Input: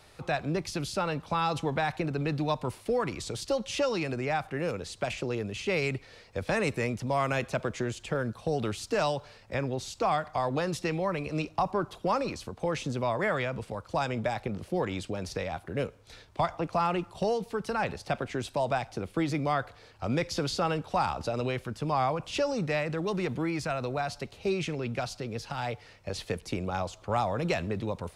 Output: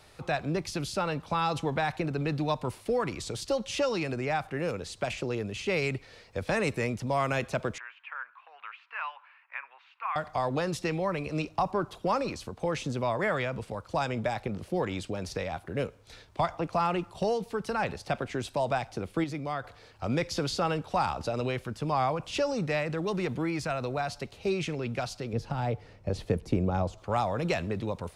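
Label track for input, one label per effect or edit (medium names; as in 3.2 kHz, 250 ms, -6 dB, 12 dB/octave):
7.780000	10.160000	Chebyshev band-pass 990–2600 Hz, order 3
19.240000	19.640000	gain -5.5 dB
25.330000	26.980000	tilt shelf lows +7.5 dB, about 880 Hz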